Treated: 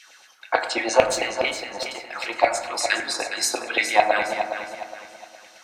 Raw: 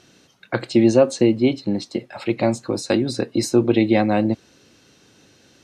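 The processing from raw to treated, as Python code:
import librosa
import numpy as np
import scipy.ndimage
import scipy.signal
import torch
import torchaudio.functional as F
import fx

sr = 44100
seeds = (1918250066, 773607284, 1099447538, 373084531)

p1 = fx.halfwave_gain(x, sr, db=-3.0, at=(1.04, 2.24))
p2 = fx.high_shelf(p1, sr, hz=4900.0, db=8.5)
p3 = fx.filter_lfo_highpass(p2, sr, shape='saw_down', hz=9.0, low_hz=670.0, high_hz=2500.0, q=4.8)
p4 = p3 + fx.echo_feedback(p3, sr, ms=414, feedback_pct=34, wet_db=-9, dry=0)
p5 = fx.rev_fdn(p4, sr, rt60_s=1.3, lf_ratio=1.2, hf_ratio=0.35, size_ms=63.0, drr_db=5.5)
y = F.gain(torch.from_numpy(p5), -1.0).numpy()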